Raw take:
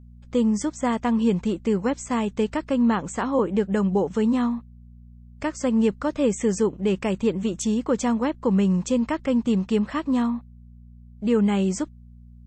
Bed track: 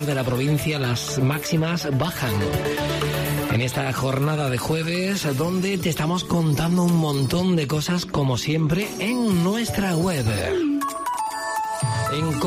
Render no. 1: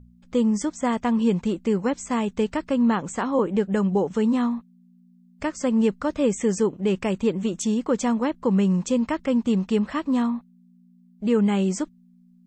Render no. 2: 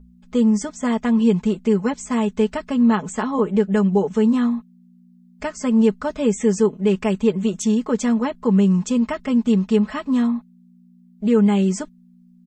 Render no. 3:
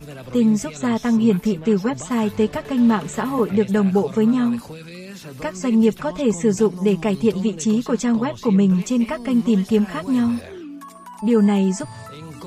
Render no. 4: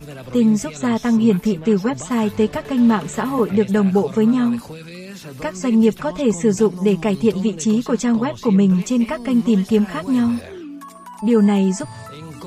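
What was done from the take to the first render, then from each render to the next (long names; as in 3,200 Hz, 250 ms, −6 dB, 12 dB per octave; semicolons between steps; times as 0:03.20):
hum removal 60 Hz, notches 2
comb filter 4.7 ms, depth 79%
mix in bed track −13.5 dB
level +1.5 dB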